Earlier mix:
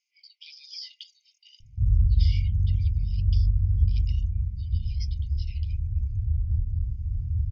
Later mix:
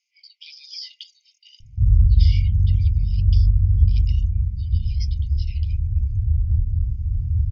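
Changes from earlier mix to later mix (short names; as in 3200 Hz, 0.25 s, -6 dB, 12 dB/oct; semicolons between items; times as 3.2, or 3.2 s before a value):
speech +4.5 dB; background +6.0 dB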